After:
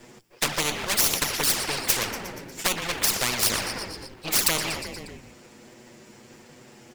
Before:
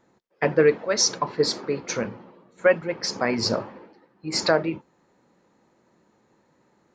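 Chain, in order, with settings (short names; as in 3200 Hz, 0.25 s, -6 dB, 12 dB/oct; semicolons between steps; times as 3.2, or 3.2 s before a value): minimum comb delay 0.38 ms; high shelf 3600 Hz +11.5 dB; de-hum 56.99 Hz, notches 2; envelope flanger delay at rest 8.4 ms, full sweep at -14 dBFS; frequency-shifting echo 0.119 s, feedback 62%, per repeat -43 Hz, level -23 dB; spectral compressor 4:1; gain +5 dB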